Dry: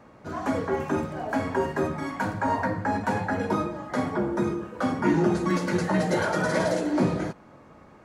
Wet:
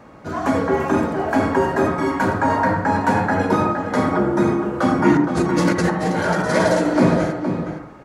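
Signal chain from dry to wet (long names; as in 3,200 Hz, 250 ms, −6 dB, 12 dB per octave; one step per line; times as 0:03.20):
0:05.17–0:06.51: compressor whose output falls as the input rises −28 dBFS, ratio −0.5
slap from a distant wall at 80 metres, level −7 dB
convolution reverb RT60 0.35 s, pre-delay 68 ms, DRR 5.5 dB
level +7 dB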